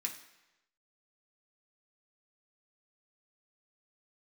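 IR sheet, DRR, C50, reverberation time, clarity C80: 0.0 dB, 9.5 dB, 1.0 s, 12.0 dB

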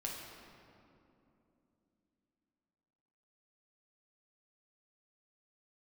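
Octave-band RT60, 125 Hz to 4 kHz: 3.6, 4.3, 3.2, 2.6, 2.0, 1.5 seconds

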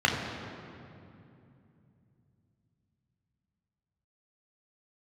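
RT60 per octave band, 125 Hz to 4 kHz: 4.7, 4.0, 2.9, 2.5, 2.2, 1.7 seconds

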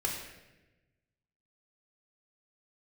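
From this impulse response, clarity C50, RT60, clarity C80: 3.5 dB, 1.1 s, 5.5 dB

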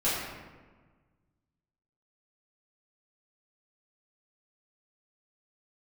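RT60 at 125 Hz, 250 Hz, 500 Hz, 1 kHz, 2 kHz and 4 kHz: 2.1, 1.8, 1.4, 1.3, 1.2, 0.80 seconds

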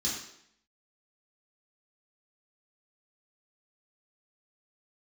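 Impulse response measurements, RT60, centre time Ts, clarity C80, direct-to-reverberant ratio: 0.70 s, 47 ms, 6.0 dB, −7.5 dB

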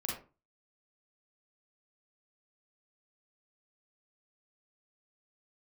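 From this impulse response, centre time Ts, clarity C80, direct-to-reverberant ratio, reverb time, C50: 41 ms, 9.0 dB, −3.5 dB, 0.35 s, 2.5 dB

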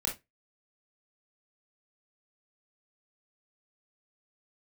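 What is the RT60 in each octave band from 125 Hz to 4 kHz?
0.25, 0.25, 0.20, 0.15, 0.20, 0.15 seconds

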